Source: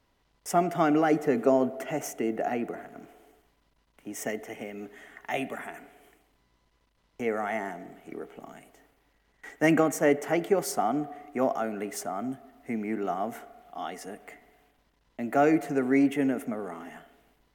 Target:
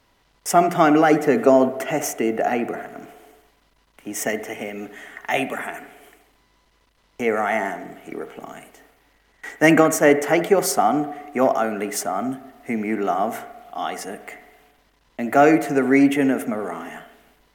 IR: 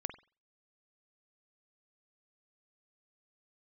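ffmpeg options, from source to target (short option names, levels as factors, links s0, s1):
-filter_complex "[0:a]bandreject=f=59.66:t=h:w=4,bandreject=f=119.32:t=h:w=4,bandreject=f=178.98:t=h:w=4,asplit=2[s0][s1];[1:a]atrim=start_sample=2205,asetrate=30870,aresample=44100,lowshelf=f=490:g=-10.5[s2];[s1][s2]afir=irnorm=-1:irlink=0,volume=1.12[s3];[s0][s3]amix=inputs=2:normalize=0,volume=1.58"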